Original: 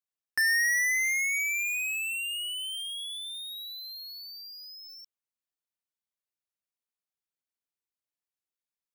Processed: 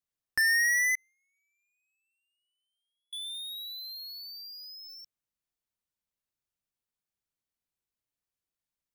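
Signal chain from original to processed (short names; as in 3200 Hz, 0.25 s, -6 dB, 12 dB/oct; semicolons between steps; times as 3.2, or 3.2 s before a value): 0.95–3.13 gate -24 dBFS, range -50 dB; low shelf 210 Hz +11.5 dB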